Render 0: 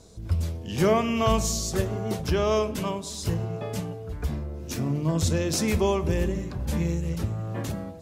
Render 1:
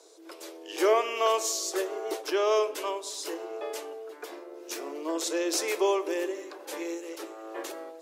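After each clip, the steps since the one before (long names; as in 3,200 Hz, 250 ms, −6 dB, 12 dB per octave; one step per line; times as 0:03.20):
Chebyshev high-pass filter 320 Hz, order 6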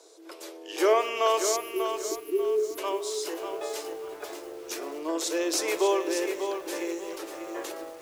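time-frequency box erased 0:01.56–0:02.78, 460–10,000 Hz
feedback echo at a low word length 592 ms, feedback 35%, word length 8 bits, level −7 dB
level +1 dB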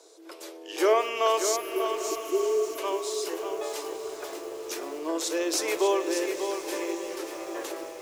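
feedback delay with all-pass diffusion 979 ms, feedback 41%, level −11.5 dB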